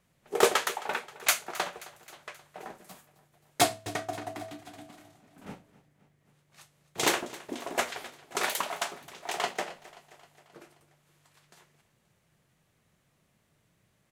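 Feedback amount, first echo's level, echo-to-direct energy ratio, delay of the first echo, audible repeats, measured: 60%, -19.0 dB, -17.0 dB, 265 ms, 4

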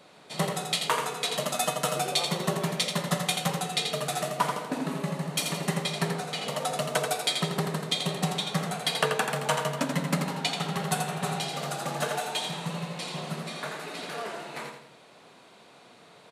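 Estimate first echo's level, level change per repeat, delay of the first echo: -6.0 dB, -8.5 dB, 84 ms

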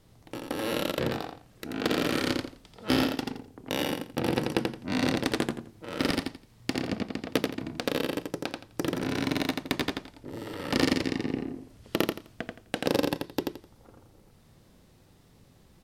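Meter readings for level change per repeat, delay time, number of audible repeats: -13.0 dB, 85 ms, 3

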